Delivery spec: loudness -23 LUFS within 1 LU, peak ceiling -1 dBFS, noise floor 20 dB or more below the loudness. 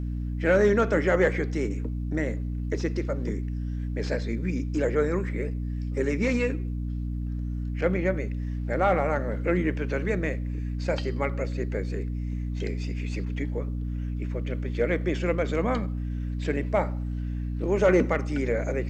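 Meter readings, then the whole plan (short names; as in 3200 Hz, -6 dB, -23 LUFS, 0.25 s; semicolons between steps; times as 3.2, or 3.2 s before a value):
hum 60 Hz; harmonics up to 300 Hz; hum level -28 dBFS; loudness -28.0 LUFS; peak -10.5 dBFS; loudness target -23.0 LUFS
-> de-hum 60 Hz, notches 5; gain +5 dB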